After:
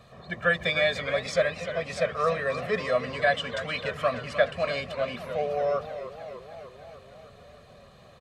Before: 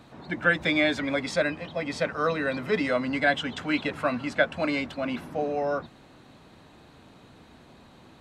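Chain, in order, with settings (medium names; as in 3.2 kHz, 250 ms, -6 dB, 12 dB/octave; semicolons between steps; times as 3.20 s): comb 1.7 ms, depth 93%; modulated delay 302 ms, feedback 68%, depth 126 cents, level -12 dB; trim -3.5 dB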